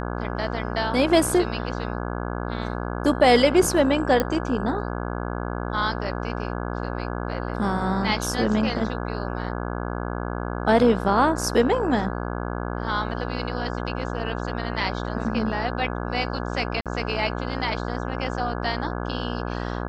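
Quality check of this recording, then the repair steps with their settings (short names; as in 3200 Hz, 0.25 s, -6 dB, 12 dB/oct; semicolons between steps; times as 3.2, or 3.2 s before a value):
buzz 60 Hz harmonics 28 -29 dBFS
4.2 pop -8 dBFS
16.81–16.86 gap 47 ms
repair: de-click; de-hum 60 Hz, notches 28; interpolate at 16.81, 47 ms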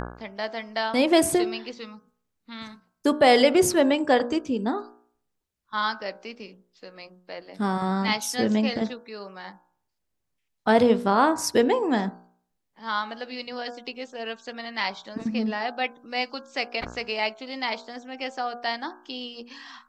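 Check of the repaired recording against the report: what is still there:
none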